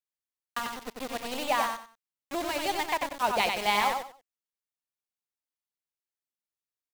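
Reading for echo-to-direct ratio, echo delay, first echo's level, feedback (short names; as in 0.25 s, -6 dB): -4.0 dB, 93 ms, -4.5 dB, 24%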